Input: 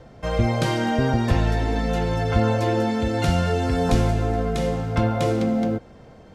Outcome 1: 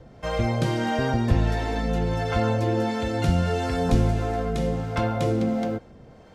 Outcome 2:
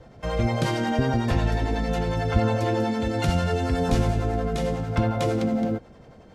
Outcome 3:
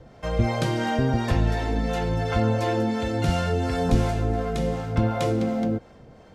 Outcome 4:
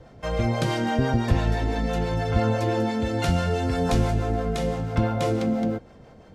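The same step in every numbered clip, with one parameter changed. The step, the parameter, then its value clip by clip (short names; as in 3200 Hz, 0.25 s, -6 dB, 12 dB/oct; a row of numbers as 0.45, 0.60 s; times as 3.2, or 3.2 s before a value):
harmonic tremolo, rate: 1.5, 11, 2.8, 6 Hz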